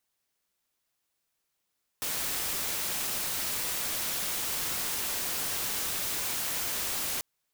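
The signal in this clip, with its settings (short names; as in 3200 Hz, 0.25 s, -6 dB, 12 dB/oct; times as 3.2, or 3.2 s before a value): noise white, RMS -32 dBFS 5.19 s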